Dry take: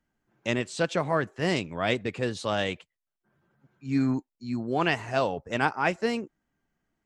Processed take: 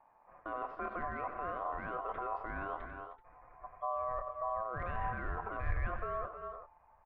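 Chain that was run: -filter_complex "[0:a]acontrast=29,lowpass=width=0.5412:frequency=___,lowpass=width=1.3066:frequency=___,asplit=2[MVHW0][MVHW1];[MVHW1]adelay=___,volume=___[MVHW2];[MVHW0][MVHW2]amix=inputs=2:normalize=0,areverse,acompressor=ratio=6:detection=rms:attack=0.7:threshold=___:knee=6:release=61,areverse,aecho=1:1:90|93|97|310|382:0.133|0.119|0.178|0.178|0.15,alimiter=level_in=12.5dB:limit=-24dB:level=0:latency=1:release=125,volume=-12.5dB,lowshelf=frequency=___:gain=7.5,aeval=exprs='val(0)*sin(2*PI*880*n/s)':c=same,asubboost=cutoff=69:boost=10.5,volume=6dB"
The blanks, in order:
1.2k, 1.2k, 26, -14dB, -35dB, 200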